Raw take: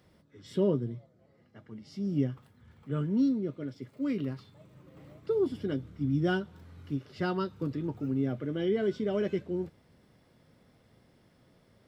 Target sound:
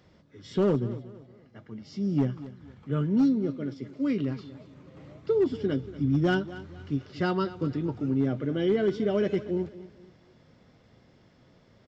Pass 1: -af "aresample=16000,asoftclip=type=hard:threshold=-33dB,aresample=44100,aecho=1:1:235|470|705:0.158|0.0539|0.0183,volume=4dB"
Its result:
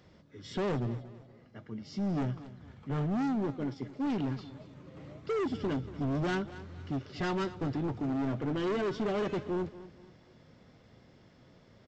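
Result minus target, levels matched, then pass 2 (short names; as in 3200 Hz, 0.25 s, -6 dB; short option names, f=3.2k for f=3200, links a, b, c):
hard clip: distortion +16 dB
-af "aresample=16000,asoftclip=type=hard:threshold=-21.5dB,aresample=44100,aecho=1:1:235|470|705:0.158|0.0539|0.0183,volume=4dB"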